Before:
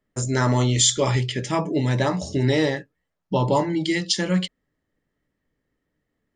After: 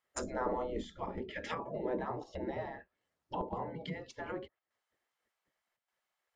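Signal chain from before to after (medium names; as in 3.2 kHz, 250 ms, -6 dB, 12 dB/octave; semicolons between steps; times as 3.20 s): low-pass that closes with the level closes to 580 Hz, closed at -19 dBFS; square tremolo 0.85 Hz, depth 60%, duty 90%; spectral gate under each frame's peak -15 dB weak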